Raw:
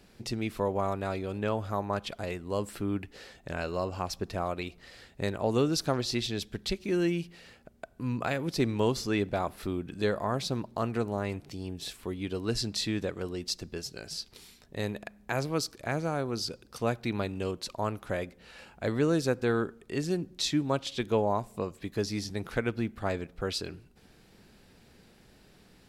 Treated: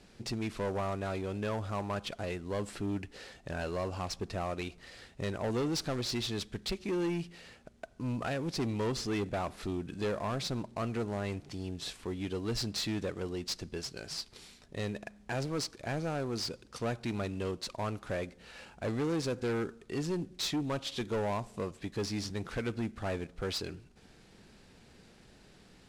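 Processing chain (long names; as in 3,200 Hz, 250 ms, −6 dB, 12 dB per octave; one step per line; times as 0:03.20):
variable-slope delta modulation 64 kbit/s
low-pass filter 8,500 Hz 12 dB per octave
soft clipping −28 dBFS, distortion −10 dB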